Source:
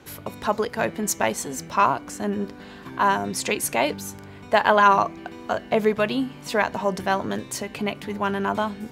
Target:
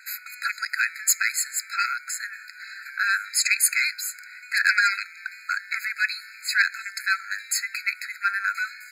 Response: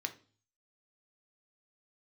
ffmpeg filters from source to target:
-af "aeval=exprs='0.668*(cos(1*acos(clip(val(0)/0.668,-1,1)))-cos(1*PI/2))+0.266*(cos(5*acos(clip(val(0)/0.668,-1,1)))-cos(5*PI/2))':c=same,afftfilt=real='re*eq(mod(floor(b*sr/1024/1300),2),1)':imag='im*eq(mod(floor(b*sr/1024/1300),2),1)':win_size=1024:overlap=0.75"

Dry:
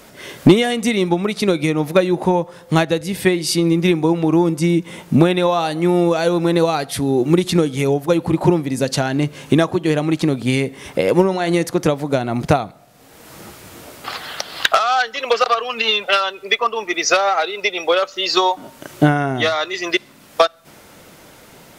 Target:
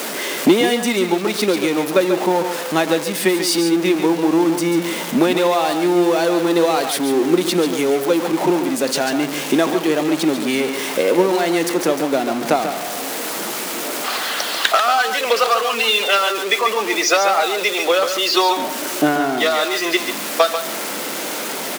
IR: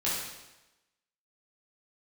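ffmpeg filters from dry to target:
-filter_complex "[0:a]aeval=exprs='val(0)+0.5*0.133*sgn(val(0))':c=same,highpass=f=230:w=0.5412,highpass=f=230:w=1.3066,asplit=2[s0][s1];[s1]aecho=0:1:141:0.398[s2];[s0][s2]amix=inputs=2:normalize=0,volume=0.75"

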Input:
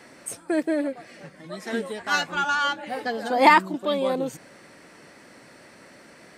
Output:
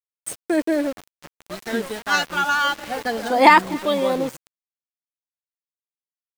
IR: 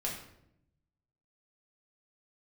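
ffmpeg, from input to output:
-filter_complex "[0:a]asplit=2[s0][s1];[s1]aecho=0:1:253|506|759:0.0708|0.0347|0.017[s2];[s0][s2]amix=inputs=2:normalize=0,aeval=exprs='val(0)*gte(abs(val(0)),0.0188)':c=same,volume=1.5"

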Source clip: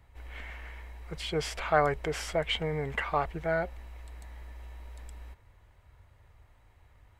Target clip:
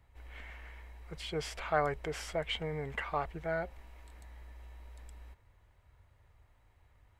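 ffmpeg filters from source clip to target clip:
-filter_complex "[0:a]asettb=1/sr,asplit=3[s0][s1][s2];[s0]atrim=end=3.684[s3];[s1]atrim=start=3.68:end=4.21,asetpts=PTS-STARTPTS,afade=t=in:d=0.004:c=qsin,afade=t=out:st=0.526:d=0.004:c=qsin,asplit=2[s4][s5];[s5]adelay=23,volume=0.562[s6];[s4][s6]amix=inputs=2:normalize=0,atrim=end_sample=23373[s7];[s2]atrim=start=4.206[s8];[s3][s7]acrossfade=d=0.004:c1=hsin:c2=qsin[s9];[s9][s8]acrossfade=d=0.004:c1=qsin:c2=hsin,volume=0.531"

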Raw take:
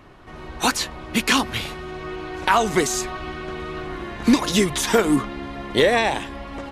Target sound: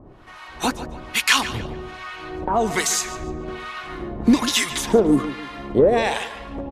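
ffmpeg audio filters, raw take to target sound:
-filter_complex "[0:a]acrossover=split=820[s0][s1];[s0]aeval=exprs='val(0)*(1-1/2+1/2*cos(2*PI*1.2*n/s))':c=same[s2];[s1]aeval=exprs='val(0)*(1-1/2-1/2*cos(2*PI*1.2*n/s))':c=same[s3];[s2][s3]amix=inputs=2:normalize=0,asplit=2[s4][s5];[s5]asoftclip=type=tanh:threshold=0.133,volume=0.266[s6];[s4][s6]amix=inputs=2:normalize=0,asplit=2[s7][s8];[s8]adelay=145,lowpass=f=4800:p=1,volume=0.224,asplit=2[s9][s10];[s10]adelay=145,lowpass=f=4800:p=1,volume=0.39,asplit=2[s11][s12];[s12]adelay=145,lowpass=f=4800:p=1,volume=0.39,asplit=2[s13][s14];[s14]adelay=145,lowpass=f=4800:p=1,volume=0.39[s15];[s7][s9][s11][s13][s15]amix=inputs=5:normalize=0,volume=1.33"

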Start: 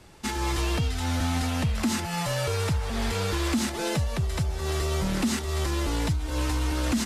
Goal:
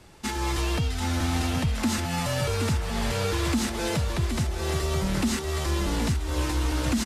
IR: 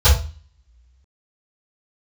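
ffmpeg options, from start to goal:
-af "aecho=1:1:773:0.422"

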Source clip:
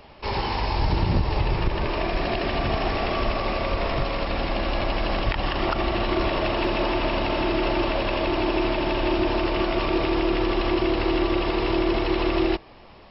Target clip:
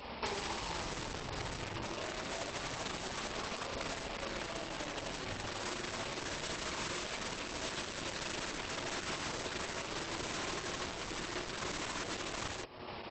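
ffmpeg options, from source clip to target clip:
-filter_complex "[0:a]highpass=f=49:w=0.5412,highpass=f=49:w=1.3066,flanger=delay=3.9:depth=4.9:regen=14:speed=0.27:shape=triangular,bass=f=250:g=-4,treble=f=4000:g=2,aeval=exprs='(mod(15*val(0)+1,2)-1)/15':c=same,asettb=1/sr,asplit=3[s0][s1][s2];[s0]atrim=end=6.304[s3];[s1]atrim=start=6.3:end=8.36,asetpts=PTS-STARTPTS,afade=t=in:d=0.004:c=qsin,afade=t=out:st=2.056:d=0.004:c=qsin,equalizer=f=790:t=o:w=0.22:g=-6[s4];[s2]atrim=start=8.356[s5];[s3][s4]acrossfade=d=0.004:c1=hsin:c2=qsin[s6];[s6][s5]acrossfade=d=0.004:c1=qsin:c2=hsin,bandreject=f=730:w=16,aecho=1:1:48|78:0.562|0.596,acompressor=threshold=0.00891:ratio=16,volume=2.24" -ar 48000 -c:a libopus -b:a 12k

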